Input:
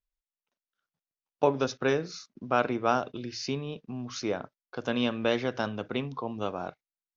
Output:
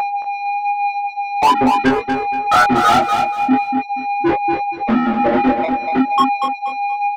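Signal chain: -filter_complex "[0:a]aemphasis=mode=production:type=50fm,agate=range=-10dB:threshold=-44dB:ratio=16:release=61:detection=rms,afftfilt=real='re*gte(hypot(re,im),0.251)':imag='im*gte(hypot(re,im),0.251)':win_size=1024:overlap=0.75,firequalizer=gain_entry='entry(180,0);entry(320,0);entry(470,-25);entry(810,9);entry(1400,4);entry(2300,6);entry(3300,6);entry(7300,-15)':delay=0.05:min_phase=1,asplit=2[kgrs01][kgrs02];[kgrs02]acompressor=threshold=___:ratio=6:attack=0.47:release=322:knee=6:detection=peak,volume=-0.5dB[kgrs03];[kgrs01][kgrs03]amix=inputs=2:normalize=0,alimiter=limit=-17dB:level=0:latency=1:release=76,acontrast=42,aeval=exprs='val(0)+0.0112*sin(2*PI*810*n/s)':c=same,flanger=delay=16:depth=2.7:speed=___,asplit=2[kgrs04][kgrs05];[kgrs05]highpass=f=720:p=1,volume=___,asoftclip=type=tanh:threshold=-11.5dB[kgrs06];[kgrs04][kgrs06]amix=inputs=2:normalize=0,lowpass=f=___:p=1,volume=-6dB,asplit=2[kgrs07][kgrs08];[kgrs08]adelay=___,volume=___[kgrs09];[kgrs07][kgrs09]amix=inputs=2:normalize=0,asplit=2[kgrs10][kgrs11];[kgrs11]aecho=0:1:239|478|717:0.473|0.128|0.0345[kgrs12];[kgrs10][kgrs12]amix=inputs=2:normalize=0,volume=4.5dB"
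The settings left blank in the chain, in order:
-38dB, 1.1, 35dB, 2600, 23, -3dB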